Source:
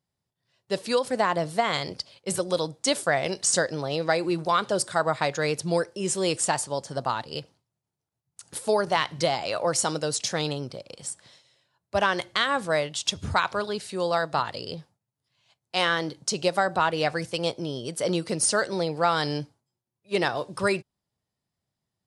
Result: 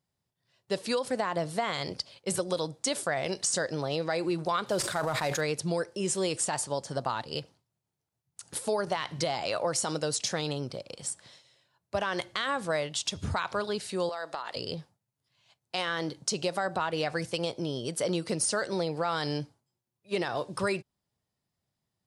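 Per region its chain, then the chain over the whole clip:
4.66–5.41 s: CVSD coder 64 kbps + decay stretcher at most 65 dB/s
14.09–14.56 s: high-pass 400 Hz + compression 10:1, threshold -30 dBFS
whole clip: peak limiter -15 dBFS; compression 2:1, threshold -28 dBFS

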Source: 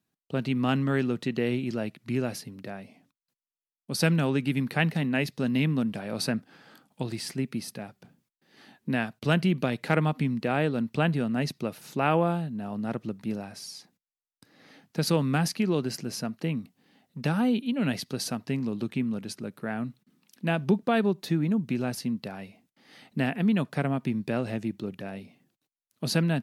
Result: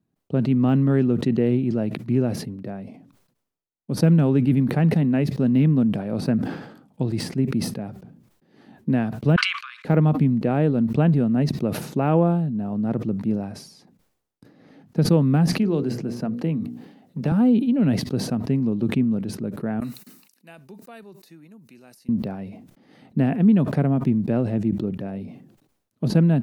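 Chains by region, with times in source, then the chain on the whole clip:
9.36–9.85 s: steep high-pass 1.1 kHz 96 dB/octave + distance through air 97 m + band-stop 1.9 kHz, Q 11
15.59–17.32 s: bass shelf 130 Hz -7.5 dB + hum notches 60/120/180/240/300/360/420/480/540 Hz + three bands compressed up and down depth 40%
19.80–22.09 s: differentiator + band-stop 3.3 kHz, Q 6.3
whole clip: de-esser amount 90%; tilt shelf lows +9 dB, about 940 Hz; decay stretcher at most 72 dB/s

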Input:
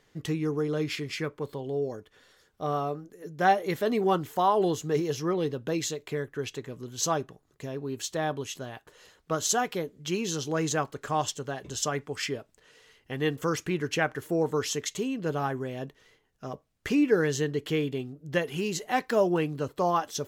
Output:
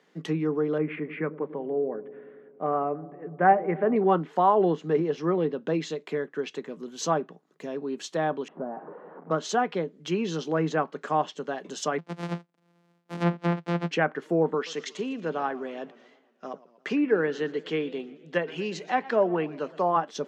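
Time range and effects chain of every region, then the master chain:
0.78–3.96 s: steep low-pass 2.4 kHz + feedback echo behind a low-pass 97 ms, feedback 76%, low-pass 520 Hz, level -14.5 dB
8.48–9.31 s: jump at every zero crossing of -37 dBFS + low-pass 1.1 kHz 24 dB/octave
11.98–13.91 s: sorted samples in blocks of 256 samples + peaking EQ 71 Hz +5 dB 2.1 oct + upward expansion, over -44 dBFS
14.54–19.96 s: band-pass 130–6700 Hz + bass shelf 420 Hz -6 dB + modulated delay 119 ms, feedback 58%, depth 189 cents, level -19.5 dB
whole clip: low-pass 2.9 kHz 6 dB/octave; low-pass that closes with the level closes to 2.3 kHz, closed at -24 dBFS; Chebyshev high-pass 160 Hz, order 6; trim +3.5 dB

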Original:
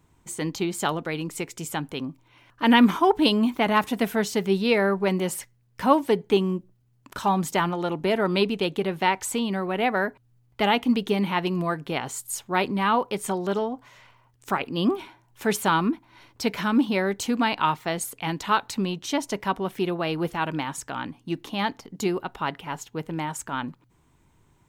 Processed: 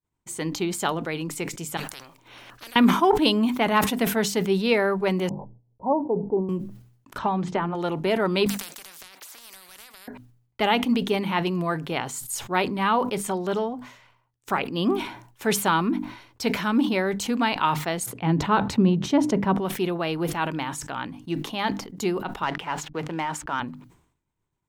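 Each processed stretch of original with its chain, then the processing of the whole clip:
1.77–2.76 s: compression, threshold -25 dBFS + spectrum-flattening compressor 10:1
5.29–6.49 s: level-controlled noise filter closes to 540 Hz, open at -15.5 dBFS + steep low-pass 970 Hz 72 dB/octave + bass shelf 360 Hz -8.5 dB
7.18–7.75 s: tape spacing loss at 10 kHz 38 dB + hum notches 60/120/180/240/300/360/420/480/540 Hz + three bands compressed up and down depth 100%
8.46–10.08 s: high-pass 1.1 kHz + compression 10:1, threshold -36 dBFS + spectrum-flattening compressor 10:1
18.06–19.58 s: high-pass 110 Hz + tilt EQ -4 dB/octave
22.43–23.60 s: hysteresis with a dead band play -46.5 dBFS + overdrive pedal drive 9 dB, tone 3.4 kHz, clips at -12.5 dBFS + three bands compressed up and down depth 40%
whole clip: hum notches 50/100/150/200/250/300 Hz; expander -48 dBFS; decay stretcher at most 88 dB/s

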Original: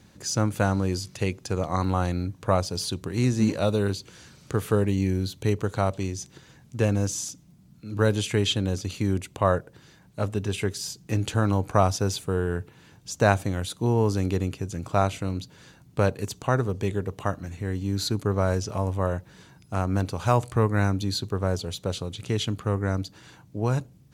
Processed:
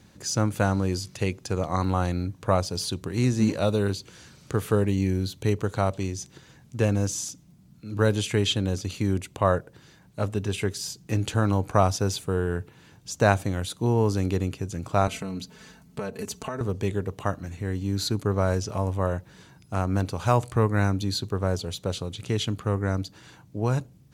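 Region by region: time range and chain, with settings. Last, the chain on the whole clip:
15.07–16.61 s: peaking EQ 3.6 kHz -3 dB 0.26 oct + comb 4.6 ms, depth 100% + compression, threshold -28 dBFS
whole clip: none

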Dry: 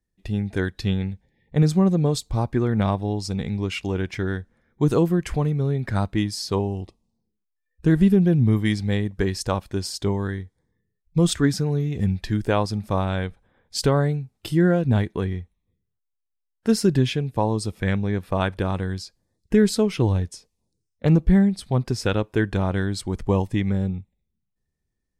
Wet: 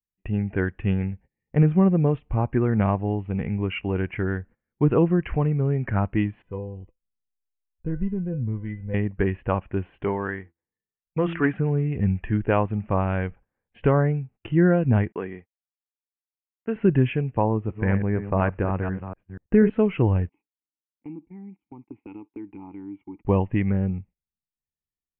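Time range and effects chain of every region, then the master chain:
6.42–8.94 s: tilt EQ -3 dB/octave + feedback comb 500 Hz, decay 0.22 s, mix 90%
10.04–11.57 s: overdrive pedal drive 11 dB, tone 3.6 kHz, clips at -7.5 dBFS + bass shelf 130 Hz -8 dB + de-hum 83.86 Hz, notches 4
15.12–16.76 s: high-pass 290 Hz + expander -49 dBFS + compression 2:1, threshold -24 dBFS
17.44–19.70 s: chunks repeated in reverse 242 ms, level -9.5 dB + low-pass 2.1 kHz
20.29–23.25 s: compression 16:1, threshold -20 dBFS + vowel filter u
whole clip: gate -44 dBFS, range -20 dB; steep low-pass 2.9 kHz 96 dB/octave

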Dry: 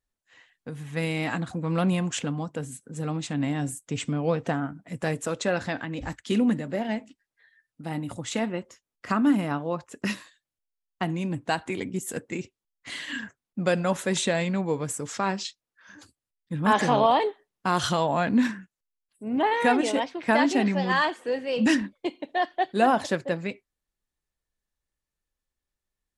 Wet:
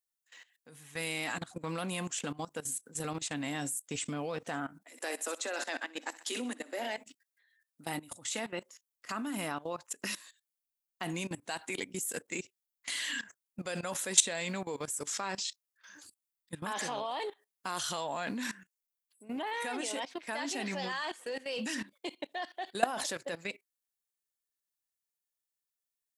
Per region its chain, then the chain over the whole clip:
4.84–6.98 s: Chebyshev high-pass 240 Hz, order 6 + thinning echo 63 ms, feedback 55%, high-pass 340 Hz, level -13 dB
whole clip: RIAA curve recording; level held to a coarse grid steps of 18 dB

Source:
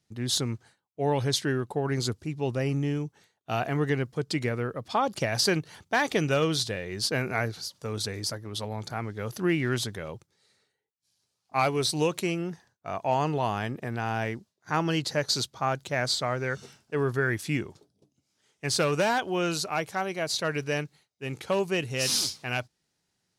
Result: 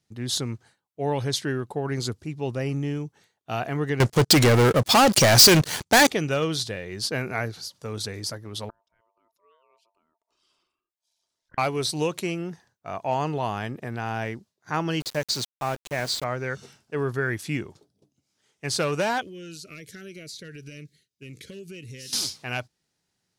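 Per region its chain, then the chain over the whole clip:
4.00–6.07 s: low-pass 9.7 kHz 24 dB/octave + waveshaping leveller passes 5 + treble shelf 5.2 kHz +9 dB
8.69–11.58 s: resonances exaggerated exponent 1.5 + inverted gate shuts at -30 dBFS, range -34 dB + ring modulator 790 Hz
15.00–16.24 s: peaking EQ 1.3 kHz -3.5 dB 0.49 oct + small samples zeroed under -33.5 dBFS
19.21–22.13 s: Butterworth band-stop 880 Hz, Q 0.73 + compression 10:1, threshold -36 dBFS + Shepard-style phaser falling 1.9 Hz
whole clip: none

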